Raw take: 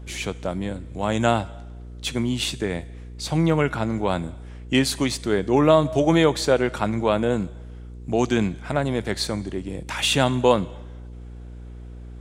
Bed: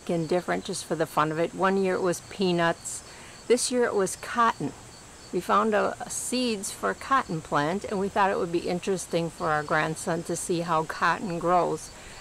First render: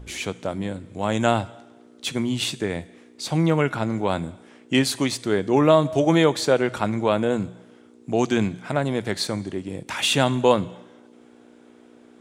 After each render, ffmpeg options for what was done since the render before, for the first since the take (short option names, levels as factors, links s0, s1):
-af "bandreject=f=60:t=h:w=4,bandreject=f=120:t=h:w=4,bandreject=f=180:t=h:w=4"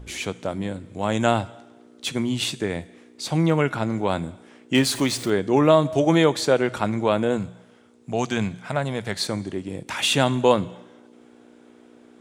-filter_complex "[0:a]asettb=1/sr,asplit=3[s0][s1][s2];[s0]atrim=end=4.754[s3];[s1]atrim=start=4.75:end=5.3,asetpts=PTS-STARTPTS,afade=t=in:d=0.004:c=qsin,afade=t=out:st=0.546:d=0.004:c=qsin,aeval=exprs='val(0)+0.5*0.0251*sgn(val(0))':c=same[s4];[s2]atrim=start=5.296[s5];[s3][s4]acrossfade=d=0.004:c1=hsin:c2=qsin[s6];[s6][s5]acrossfade=d=0.004:c1=qsin:c2=hsin,asettb=1/sr,asplit=3[s7][s8][s9];[s7]atrim=end=7.384[s10];[s8]atrim=start=7.38:end=9.22,asetpts=PTS-STARTPTS,afade=t=in:d=0.004:c=qsin,afade=t=out:st=1.836:d=0.004:c=qsin,equalizer=f=320:t=o:w=0.77:g=-8.5[s11];[s9]atrim=start=9.216[s12];[s10][s11]acrossfade=d=0.004:c1=hsin:c2=qsin[s13];[s13][s12]acrossfade=d=0.004:c1=qsin:c2=hsin"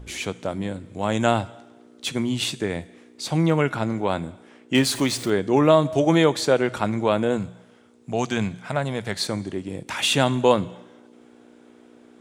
-filter_complex "[0:a]asettb=1/sr,asplit=3[s0][s1][s2];[s0]atrim=end=3.934[s3];[s1]atrim=start=3.93:end=4.75,asetpts=PTS-STARTPTS,afade=t=in:d=0.004:c=qsin,afade=t=out:st=0.816:d=0.004:c=qsin,bass=f=250:g=-2,treble=f=4000:g=-3[s4];[s2]atrim=start=4.746[s5];[s3][s4]acrossfade=d=0.004:c1=hsin:c2=qsin[s6];[s6][s5]acrossfade=d=0.004:c1=qsin:c2=hsin"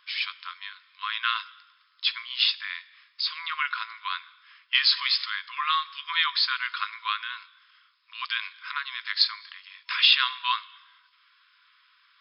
-af "afftfilt=real='re*between(b*sr/4096,990,5300)':imag='im*between(b*sr/4096,990,5300)':win_size=4096:overlap=0.75,aemphasis=mode=production:type=75fm"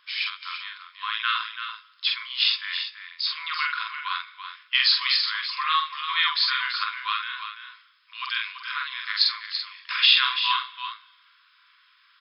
-filter_complex "[0:a]asplit=2[s0][s1];[s1]adelay=46,volume=0.708[s2];[s0][s2]amix=inputs=2:normalize=0,aecho=1:1:335:0.355"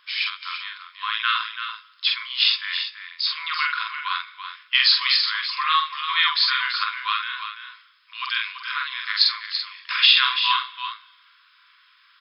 -af "volume=1.41,alimiter=limit=0.708:level=0:latency=1"